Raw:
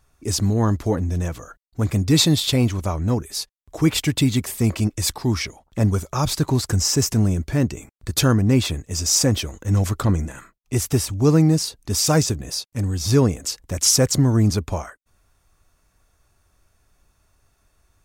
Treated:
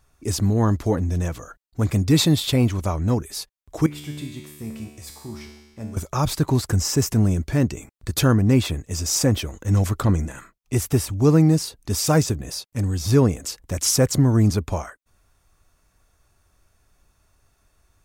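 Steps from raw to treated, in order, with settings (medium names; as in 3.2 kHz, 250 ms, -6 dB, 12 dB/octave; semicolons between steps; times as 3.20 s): dynamic bell 5.5 kHz, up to -5 dB, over -36 dBFS, Q 0.74; 3.86–5.97 s: feedback comb 74 Hz, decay 1.2 s, harmonics all, mix 90%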